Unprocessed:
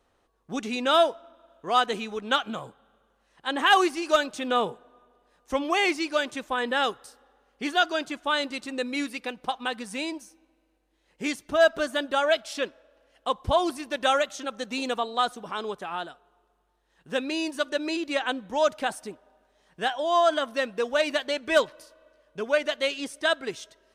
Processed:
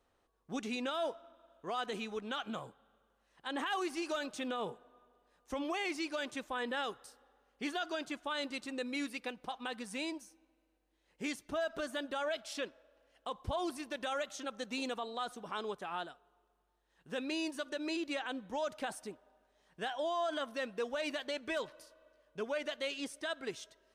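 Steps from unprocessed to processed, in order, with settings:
brickwall limiter −21 dBFS, peak gain reduction 11 dB
level −7 dB

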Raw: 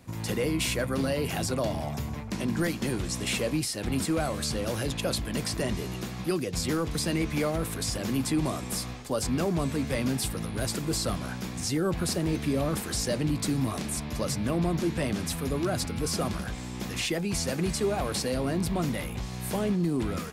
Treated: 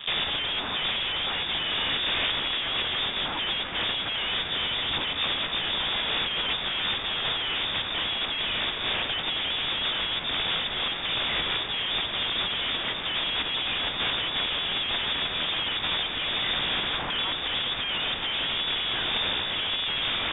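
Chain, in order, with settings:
mains-hum notches 50/100/150/200 Hz
leveller curve on the samples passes 5
wrap-around overflow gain 22.5 dB
voice inversion scrambler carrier 3,600 Hz
level +1 dB

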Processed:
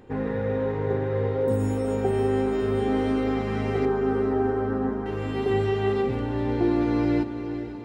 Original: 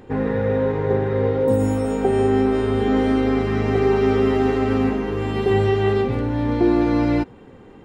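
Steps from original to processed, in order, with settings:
0:03.85–0:05.06: elliptic low-pass filter 1,700 Hz
feedback delay with all-pass diffusion 474 ms, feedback 53%, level −10 dB
level −6 dB

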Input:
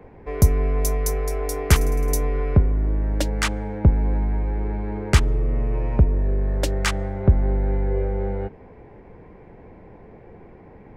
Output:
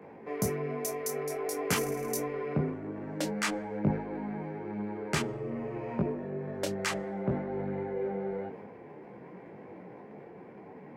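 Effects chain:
high-pass filter 150 Hz 24 dB per octave
parametric band 3,700 Hz −3 dB 0.21 octaves
in parallel at 0 dB: downward compressor, threshold −36 dBFS, peak gain reduction 19.5 dB
on the sum: transient designer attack 0 dB, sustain +7 dB
reversed playback
upward compression, threshold −35 dBFS
reversed playback
micro pitch shift up and down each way 18 cents
level −5 dB

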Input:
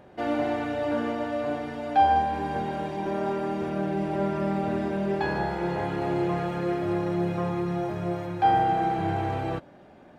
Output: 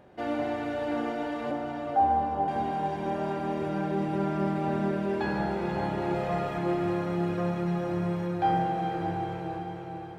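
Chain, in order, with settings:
fade-out on the ending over 2.04 s
0:01.51–0:02.48: Butterworth low-pass 1,400 Hz 72 dB per octave
0:06.14–0:06.58: comb filter 1.6 ms, depth 78%
feedback delay with all-pass diffusion 479 ms, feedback 58%, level −5 dB
level −3.5 dB

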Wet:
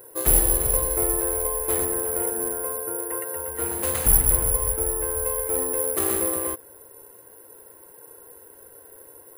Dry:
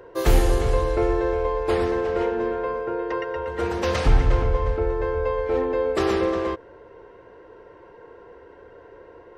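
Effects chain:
0:01.85–0:03.55: Gaussian smoothing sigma 2.2 samples
bit reduction 10 bits
bad sample-rate conversion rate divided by 4×, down filtered, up zero stuff
highs frequency-modulated by the lows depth 0.3 ms
level −6.5 dB

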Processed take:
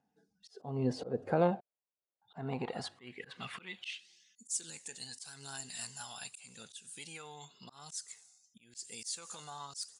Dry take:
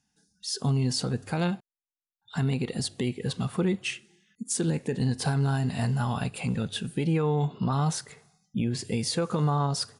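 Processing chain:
band-pass filter sweep 550 Hz → 7,400 Hz, 0:02.24–0:04.54
phase shifter 0.9 Hz, delay 1.5 ms, feedback 35%
volume swells 257 ms
level +9 dB

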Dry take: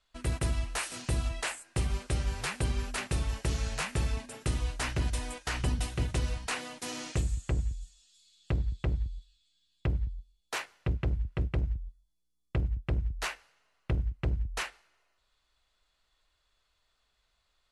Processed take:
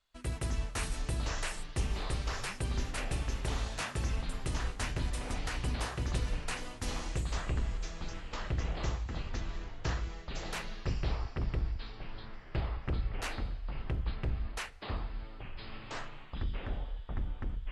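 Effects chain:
delay with pitch and tempo change per echo 135 ms, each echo −7 semitones, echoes 3
level −5 dB

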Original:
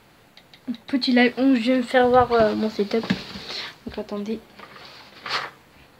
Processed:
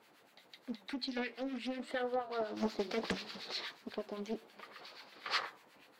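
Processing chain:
flanger 1.5 Hz, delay 8.5 ms, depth 3.7 ms, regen +86%
two-band tremolo in antiphase 8.3 Hz, depth 70%, crossover 1,200 Hz
0:00.80–0:02.57: downward compressor 2.5 to 1, threshold −36 dBFS, peak gain reduction 13 dB
high-pass filter 280 Hz 12 dB per octave
highs frequency-modulated by the lows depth 0.96 ms
level −2 dB

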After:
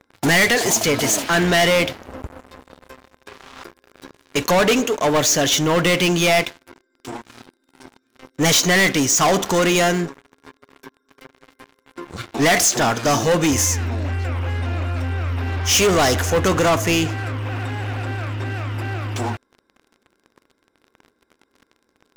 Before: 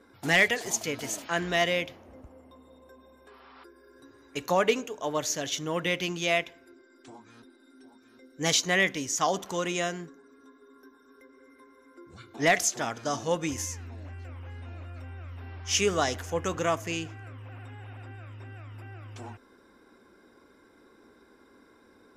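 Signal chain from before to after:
leveller curve on the samples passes 5

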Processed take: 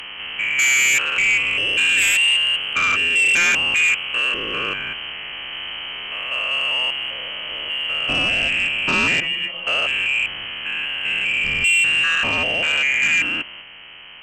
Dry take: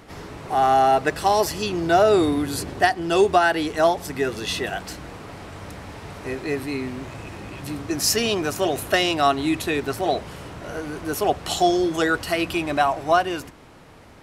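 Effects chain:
spectrum averaged block by block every 200 ms
0:09.20–0:09.67: stiff-string resonator 69 Hz, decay 0.33 s, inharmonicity 0.002
voice inversion scrambler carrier 3,100 Hz
sine wavefolder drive 9 dB, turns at −8 dBFS
level −5 dB

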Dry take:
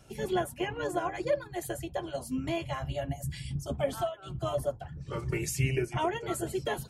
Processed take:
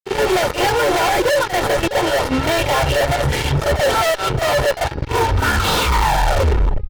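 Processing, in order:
turntable brake at the end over 2.12 s
drawn EQ curve 100 Hz 0 dB, 240 Hz −6 dB, 620 Hz +14 dB
in parallel at −5 dB: decimation without filtering 18×
on the sum: high-frequency loss of the air 360 metres
notch filter 1,100 Hz, Q 18
fuzz pedal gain 37 dB, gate −36 dBFS
comb filter 2.2 ms, depth 35%
hum removal 415.3 Hz, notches 14
on a send: backwards echo 42 ms −11.5 dB
on the sum: brickwall limiter −12 dBFS, peak gain reduction 5 dB
level +2 dB

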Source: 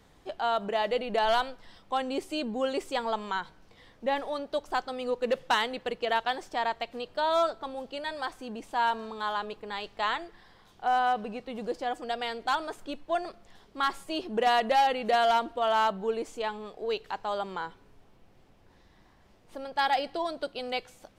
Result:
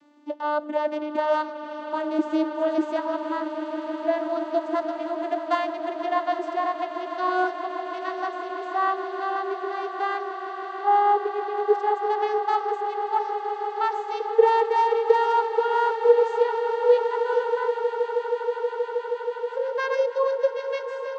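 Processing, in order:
vocoder with a gliding carrier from D4, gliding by +11 semitones
echo that builds up and dies away 159 ms, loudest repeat 8, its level −15 dB
dynamic equaliser 3,000 Hz, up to −5 dB, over −51 dBFS, Q 1.5
level +5.5 dB

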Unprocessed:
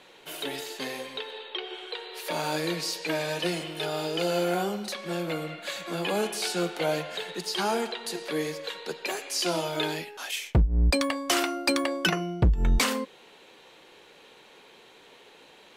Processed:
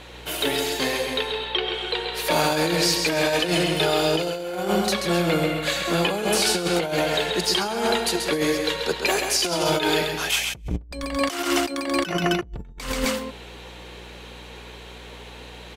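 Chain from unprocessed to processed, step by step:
mains hum 60 Hz, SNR 28 dB
loudspeakers that aren't time-aligned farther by 46 metres −6 dB, 90 metres −12 dB
compressor whose output falls as the input rises −29 dBFS, ratio −0.5
level +6.5 dB

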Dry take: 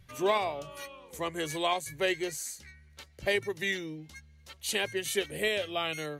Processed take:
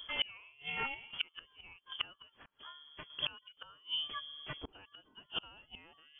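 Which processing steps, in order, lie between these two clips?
0:00.94–0:03.10: mu-law and A-law mismatch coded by A
gate with flip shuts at −28 dBFS, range −33 dB
voice inversion scrambler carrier 3,300 Hz
level +7 dB

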